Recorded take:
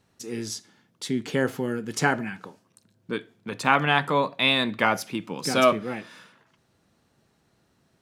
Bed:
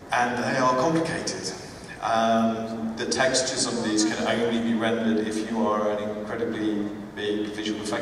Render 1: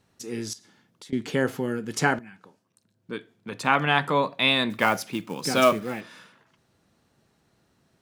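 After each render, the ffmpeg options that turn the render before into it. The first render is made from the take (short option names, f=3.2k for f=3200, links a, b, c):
-filter_complex "[0:a]asettb=1/sr,asplit=3[a][b][c];[a]atrim=end=0.534[d];[b]atrim=start=0.53:end=1.13,asetpts=PTS-STARTPTS,afade=t=in:d=0.004:c=qsin,afade=t=out:st=0.596:d=0.004:c=qsin,acompressor=threshold=-42dB:ratio=10:attack=3.2:release=140:knee=1:detection=peak[e];[c]atrim=start=1.126[f];[d][e]acrossfade=d=0.004:c1=hsin:c2=qsin[g];[g][f]acrossfade=d=0.004:c1=qsin:c2=hsin,asettb=1/sr,asplit=3[h][i][j];[h]atrim=end=4.704[k];[i]atrim=start=4.7:end=6.01,asetpts=PTS-STARTPTS,afade=t=in:d=0.004:c=qsin,afade=t=out:st=1.306:d=0.004:c=qsin,acrusher=bits=5:mode=log:mix=0:aa=0.000001[l];[j]atrim=start=6.006[m];[k][l]acrossfade=d=0.004:c1=hsin:c2=qsin[n];[n][m]acrossfade=d=0.004:c1=qsin:c2=hsin,asplit=2[o][p];[o]atrim=end=2.19,asetpts=PTS-STARTPTS,afade=t=out:st=2.186:d=0.004:c=hsin:silence=0.188365[q];[p]atrim=start=2.19,asetpts=PTS-STARTPTS,afade=t=in:d=1.83:silence=0.188365[r];[q][r]concat=n=2:v=0:a=1"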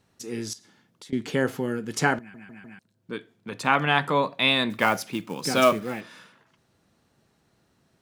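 -filter_complex "[0:a]asplit=5[a][b][c][d][e];[a]atrim=end=2.342[f];[b]atrim=start=2.188:end=2.342[g];[c]atrim=start=2.188:end=2.342[h];[d]atrim=start=2.188:end=2.342[i];[e]atrim=start=2.788[j];[f][g]acrossfade=d=0.004:c1=hsin:c2=hsin[k];[k][h]acrossfade=d=0.004:c1=hsin:c2=hsin[l];[l][i]acrossfade=d=0.004:c1=hsin:c2=hsin[m];[m][j]acrossfade=d=0.004:c1=hsin:c2=hsin"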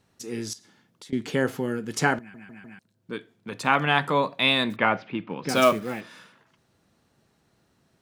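-filter_complex "[0:a]asettb=1/sr,asplit=3[a][b][c];[a]atrim=end=4.764[d];[b]atrim=start=4.76:end=5.49,asetpts=PTS-STARTPTS,afade=t=in:d=0.004:c=qsin,afade=t=out:st=0.726:d=0.004:c=qsin,lowpass=f=3k:w=0.5412,lowpass=f=3k:w=1.3066[e];[c]atrim=start=5.486[f];[d][e]acrossfade=d=0.004:c1=hsin:c2=qsin[g];[g][f]acrossfade=d=0.004:c1=qsin:c2=hsin"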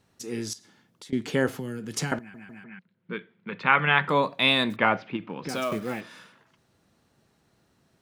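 -filter_complex "[0:a]asettb=1/sr,asplit=3[a][b][c];[a]atrim=end=1.484[d];[b]atrim=start=1.48:end=2.12,asetpts=PTS-STARTPTS,afade=t=in:d=0.004:c=qsin,afade=t=out:st=0.636:d=0.004:c=qsin,acrossover=split=190|3000[e][f][g];[f]acompressor=threshold=-34dB:ratio=6:attack=3.2:release=140:knee=2.83:detection=peak[h];[e][h][g]amix=inputs=3:normalize=0[i];[c]atrim=start=2.116[j];[d][i]acrossfade=d=0.004:c1=hsin:c2=qsin[k];[k][j]acrossfade=d=0.004:c1=qsin:c2=hsin,asettb=1/sr,asplit=3[l][m][n];[l]atrim=end=2.644[o];[m]atrim=start=2.64:end=4.09,asetpts=PTS-STARTPTS,afade=t=in:d=0.004:c=qsin,afade=t=out:st=1.446:d=0.004:c=qsin,highpass=f=140:w=0.5412,highpass=f=140:w=1.3066,equalizer=f=180:t=q:w=4:g=8,equalizer=f=280:t=q:w=4:g=-9,equalizer=f=690:t=q:w=4:g=-7,equalizer=f=1.4k:t=q:w=4:g=3,equalizer=f=2.1k:t=q:w=4:g=6,lowpass=f=3.4k:w=0.5412,lowpass=f=3.4k:w=1.3066[p];[n]atrim=start=4.086[q];[o][p]acrossfade=d=0.004:c1=hsin:c2=qsin[r];[r][q]acrossfade=d=0.004:c1=qsin:c2=hsin,asettb=1/sr,asplit=3[s][t][u];[s]atrim=end=5.164[v];[t]atrim=start=5.16:end=5.72,asetpts=PTS-STARTPTS,afade=t=in:d=0.004:c=qsin,afade=t=out:st=0.556:d=0.004:c=qsin,acompressor=threshold=-30dB:ratio=2.5:attack=3.2:release=140:knee=1:detection=peak[w];[u]atrim=start=5.716[x];[v][w]acrossfade=d=0.004:c1=hsin:c2=qsin[y];[y][x]acrossfade=d=0.004:c1=qsin:c2=hsin"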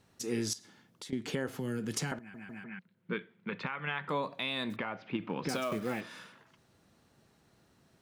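-af "acompressor=threshold=-26dB:ratio=6,alimiter=limit=-22dB:level=0:latency=1:release=453"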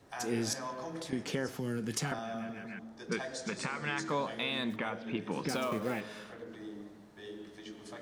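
-filter_complex "[1:a]volume=-19dB[a];[0:a][a]amix=inputs=2:normalize=0"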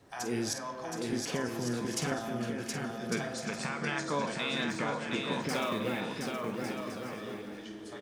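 -filter_complex "[0:a]asplit=2[a][b];[b]adelay=49,volume=-10dB[c];[a][c]amix=inputs=2:normalize=0,aecho=1:1:720|1152|1411|1567|1660:0.631|0.398|0.251|0.158|0.1"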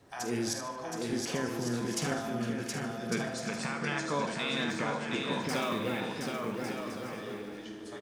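-af "aecho=1:1:75|150|225|300:0.299|0.125|0.0527|0.0221"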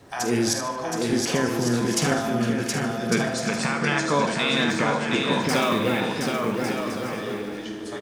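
-af "volume=10dB"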